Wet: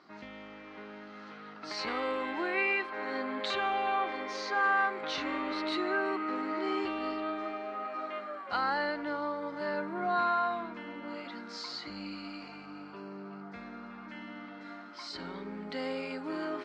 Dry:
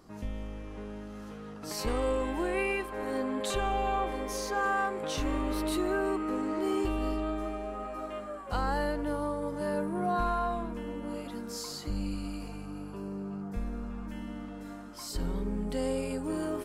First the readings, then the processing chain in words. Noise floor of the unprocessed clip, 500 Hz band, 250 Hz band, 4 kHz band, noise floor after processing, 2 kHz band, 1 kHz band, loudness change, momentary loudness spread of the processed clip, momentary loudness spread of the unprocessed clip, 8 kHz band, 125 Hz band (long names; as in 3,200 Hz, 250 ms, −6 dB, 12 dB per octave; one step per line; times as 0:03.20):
−43 dBFS, −3.5 dB, −4.5 dB, +2.0 dB, −48 dBFS, +5.0 dB, +1.0 dB, 0.0 dB, 17 LU, 12 LU, below −10 dB, −14.0 dB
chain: loudspeaker in its box 310–4,800 Hz, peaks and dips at 470 Hz −8 dB, 1,400 Hz +6 dB, 2,100 Hz +8 dB, 4,200 Hz +6 dB